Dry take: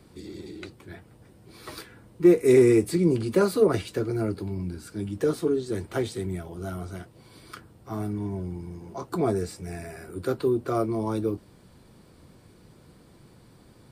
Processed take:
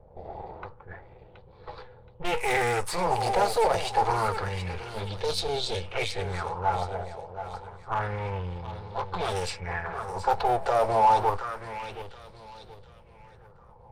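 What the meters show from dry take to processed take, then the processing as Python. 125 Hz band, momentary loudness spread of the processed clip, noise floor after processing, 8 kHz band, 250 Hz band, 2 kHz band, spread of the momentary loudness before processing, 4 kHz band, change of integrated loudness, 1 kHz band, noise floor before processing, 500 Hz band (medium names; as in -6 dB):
-4.0 dB, 21 LU, -53 dBFS, +1.5 dB, -15.5 dB, +6.5 dB, 21 LU, +8.5 dB, -2.5 dB, +13.5 dB, -55 dBFS, -4.5 dB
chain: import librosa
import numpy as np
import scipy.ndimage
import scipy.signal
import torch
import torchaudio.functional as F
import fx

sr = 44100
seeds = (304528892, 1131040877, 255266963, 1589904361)

p1 = np.where(x < 0.0, 10.0 ** (-12.0 / 20.0) * x, x)
p2 = fx.env_lowpass(p1, sr, base_hz=420.0, full_db=-24.5)
p3 = fx.tone_stack(p2, sr, knobs='10-0-10')
p4 = fx.spec_box(p3, sr, start_s=5.1, length_s=1.18, low_hz=750.0, high_hz=2100.0, gain_db=-8)
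p5 = fx.high_shelf(p4, sr, hz=11000.0, db=-11.5)
p6 = fx.over_compress(p5, sr, threshold_db=-47.0, ratio=-0.5)
p7 = p5 + F.gain(torch.from_numpy(p6), -1.5).numpy()
p8 = fx.small_body(p7, sr, hz=(500.0, 840.0), ring_ms=25, db=14)
p9 = np.clip(10.0 ** (30.0 / 20.0) * p8, -1.0, 1.0) / 10.0 ** (30.0 / 20.0)
p10 = p9 + fx.echo_feedback(p9, sr, ms=724, feedback_pct=35, wet_db=-10.0, dry=0)
p11 = fx.bell_lfo(p10, sr, hz=0.28, low_hz=650.0, high_hz=4100.0, db=12)
y = F.gain(torch.from_numpy(p11), 7.0).numpy()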